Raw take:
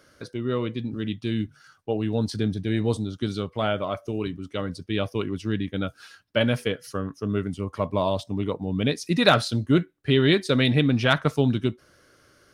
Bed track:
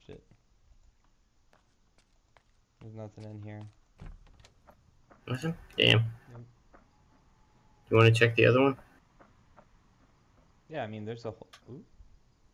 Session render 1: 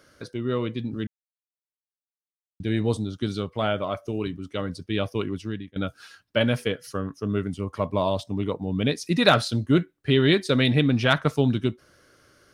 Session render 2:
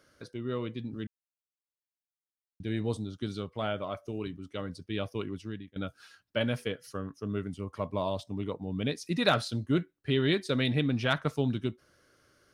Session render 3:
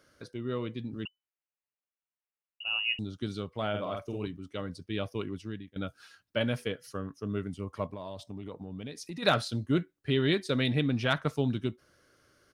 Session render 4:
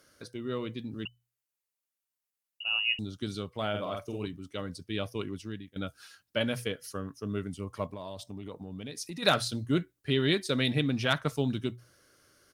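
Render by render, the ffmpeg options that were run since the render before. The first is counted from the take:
-filter_complex "[0:a]asplit=4[a][b][c][d];[a]atrim=end=1.07,asetpts=PTS-STARTPTS,afade=t=out:st=1.066:d=0.004:c=hsin[e];[b]atrim=start=1.07:end=2.6,asetpts=PTS-STARTPTS,volume=0[f];[c]atrim=start=2.6:end=5.76,asetpts=PTS-STARTPTS,afade=t=in:d=0.004:c=hsin,afade=t=out:st=2.7:d=0.46:silence=0.0841395[g];[d]atrim=start=5.76,asetpts=PTS-STARTPTS,afade=t=in:d=0.004:c=hsin:silence=0.0841395[h];[e][f][g][h]concat=n=4:v=0:a=1"
-af "volume=-7.5dB"
-filter_complex "[0:a]asettb=1/sr,asplit=3[a][b][c];[a]atrim=end=1.054[d];[b]atrim=start=1.05:end=2.99,asetpts=PTS-STARTPTS,afade=t=in:d=0.004:c=qsin,afade=t=out:st=1.936:d=0.004:c=qsin,lowpass=f=2.6k:t=q:w=0.5098,lowpass=f=2.6k:t=q:w=0.6013,lowpass=f=2.6k:t=q:w=0.9,lowpass=f=2.6k:t=q:w=2.563,afreqshift=-3000[e];[c]atrim=start=2.986[f];[d][e]acrossfade=d=0.004:c1=hsin:c2=qsin[g];[g][f]acrossfade=d=0.004:c1=qsin:c2=hsin,asplit=3[h][i][j];[h]afade=t=out:st=3.73:d=0.02[k];[i]asplit=2[l][m];[m]adelay=48,volume=-4dB[n];[l][n]amix=inputs=2:normalize=0,afade=t=in:st=3.73:d=0.02,afade=t=out:st=4.25:d=0.02[o];[j]afade=t=in:st=4.25:d=0.02[p];[k][o][p]amix=inputs=3:normalize=0,asplit=3[q][r][s];[q]afade=t=out:st=7.86:d=0.02[t];[r]acompressor=threshold=-36dB:ratio=6:attack=3.2:release=140:knee=1:detection=peak,afade=t=in:st=7.86:d=0.02,afade=t=out:st=9.22:d=0.02[u];[s]afade=t=in:st=9.22:d=0.02[v];[t][u][v]amix=inputs=3:normalize=0"
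-af "aemphasis=mode=production:type=cd,bandreject=f=60:t=h:w=6,bandreject=f=120:t=h:w=6"

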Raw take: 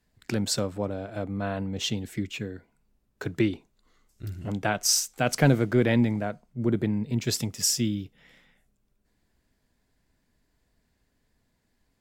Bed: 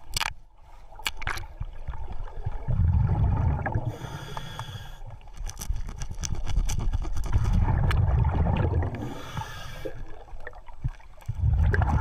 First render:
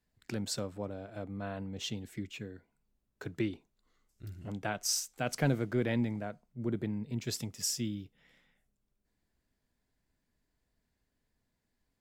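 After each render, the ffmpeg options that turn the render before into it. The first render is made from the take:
-af "volume=-9dB"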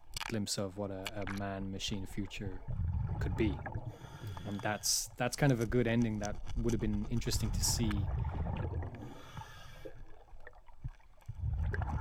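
-filter_complex "[1:a]volume=-13dB[a];[0:a][a]amix=inputs=2:normalize=0"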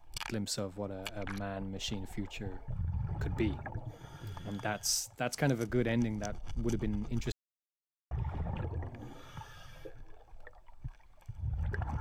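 -filter_complex "[0:a]asettb=1/sr,asplit=3[a][b][c];[a]atrim=end=1.564[d];[b]atrim=start=1.56:end=2.6,asetpts=PTS-STARTPTS,afade=t=in:d=0.004:c=qsin,afade=t=out:st=1.036:d=0.004:c=qsin,equalizer=f=730:t=o:w=0.81:g=5.5[e];[c]atrim=start=2.596[f];[d][e]acrossfade=d=0.004:c1=hsin:c2=qsin[g];[g][f]acrossfade=d=0.004:c1=qsin:c2=hsin,asettb=1/sr,asplit=3[h][i][j];[h]atrim=end=5.004[k];[i]atrim=start=5:end=5.73,asetpts=PTS-STARTPTS,afade=t=in:d=0.004:c=qsin,afade=t=out:st=0.726:d=0.004:c=qsin,highpass=f=110:p=1[l];[j]atrim=start=5.726[m];[k][l]acrossfade=d=0.004:c1=hsin:c2=qsin[n];[n][m]acrossfade=d=0.004:c1=qsin:c2=hsin,asplit=3[o][p][q];[o]atrim=end=7.32,asetpts=PTS-STARTPTS,afade=t=out:st=7.316:d=0.004:c=hsin[r];[p]atrim=start=7.32:end=8.11,asetpts=PTS-STARTPTS,volume=0[s];[q]atrim=start=8.11,asetpts=PTS-STARTPTS,afade=t=in:d=0.004:c=hsin[t];[r][s][t]concat=n=3:v=0:a=1"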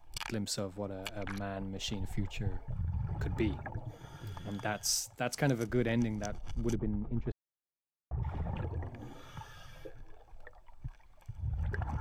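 -filter_complex "[0:a]asettb=1/sr,asplit=3[a][b][c];[a]atrim=end=2.004[d];[b]atrim=start=2:end=2.59,asetpts=PTS-STARTPTS,afade=t=in:d=0.004:c=qsin,afade=t=out:st=0.586:d=0.004:c=qsin,lowshelf=f=190:t=q:w=1.5:g=6[e];[c]atrim=start=2.586[f];[d][e]acrossfade=d=0.004:c1=hsin:c2=qsin[g];[g][f]acrossfade=d=0.004:c1=qsin:c2=hsin,asettb=1/sr,asplit=3[h][i][j];[h]atrim=end=6.754[k];[i]atrim=start=6.75:end=8.23,asetpts=PTS-STARTPTS,afade=t=in:d=0.004:c=qsin,afade=t=out:st=1.476:d=0.004:c=qsin,lowpass=1.1k[l];[j]atrim=start=8.226[m];[k][l]acrossfade=d=0.004:c1=hsin:c2=qsin[n];[n][m]acrossfade=d=0.004:c1=qsin:c2=hsin"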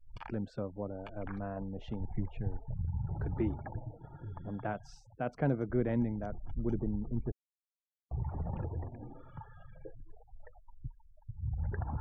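-af "afftfilt=real='re*gte(hypot(re,im),0.00398)':imag='im*gte(hypot(re,im),0.00398)':win_size=1024:overlap=0.75,lowpass=1.2k"

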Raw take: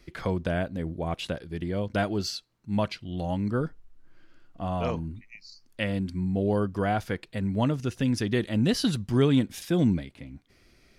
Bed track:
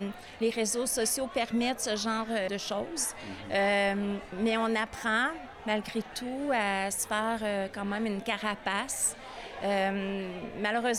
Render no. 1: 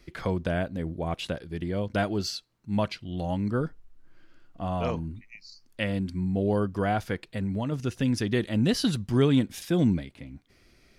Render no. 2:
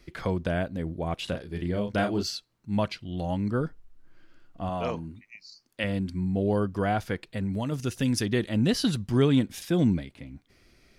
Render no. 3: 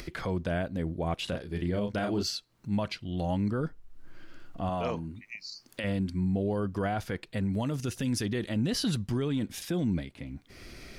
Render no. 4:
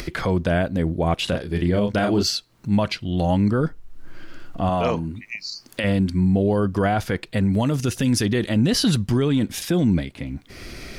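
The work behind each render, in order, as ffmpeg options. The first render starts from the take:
-filter_complex "[0:a]asplit=3[a][b][c];[a]afade=t=out:st=7.28:d=0.02[d];[b]acompressor=threshold=-25dB:ratio=6:attack=3.2:release=140:knee=1:detection=peak,afade=t=in:st=7.28:d=0.02,afade=t=out:st=7.71:d=0.02[e];[c]afade=t=in:st=7.71:d=0.02[f];[d][e][f]amix=inputs=3:normalize=0"
-filter_complex "[0:a]asettb=1/sr,asplit=3[a][b][c];[a]atrim=end=1.244[d];[b]atrim=start=1.24:end=2.23,asetpts=PTS-STARTPTS,afade=t=in:d=0.004:c=qsin,afade=t=out:st=0.986:d=0.004:c=qsin,asplit=2[e][f];[f]adelay=34,volume=-6dB[g];[e][g]amix=inputs=2:normalize=0,atrim=end_sample=43659[h];[c]atrim=start=2.226[i];[d][h]acrossfade=d=0.004:c1=hsin:c2=qsin[j];[j][i]acrossfade=d=0.004:c1=qsin:c2=hsin,asettb=1/sr,asplit=3[k][l][m];[k]atrim=end=4.694[n];[l]atrim=start=4.69:end=5.84,asetpts=PTS-STARTPTS,afade=t=in:d=0.004:c=qsin,afade=t=out:st=1.146:d=0.004:c=qsin,highpass=f=190:p=1[o];[m]atrim=start=5.836[p];[n][o]acrossfade=d=0.004:c1=hsin:c2=qsin[q];[q][p]acrossfade=d=0.004:c1=qsin:c2=hsin,asettb=1/sr,asplit=3[r][s][t];[r]atrim=end=7.534[u];[s]atrim=start=7.53:end=8.26,asetpts=PTS-STARTPTS,afade=t=in:d=0.004:c=qsin,afade=t=out:st=0.726:d=0.004:c=qsin,aemphasis=mode=production:type=cd[v];[t]atrim=start=8.256[w];[u][v]acrossfade=d=0.004:c1=hsin:c2=qsin[x];[x][w]acrossfade=d=0.004:c1=qsin:c2=hsin"
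-af "acompressor=mode=upward:threshold=-33dB:ratio=2.5,alimiter=limit=-21.5dB:level=0:latency=1:release=26"
-af "volume=10dB"

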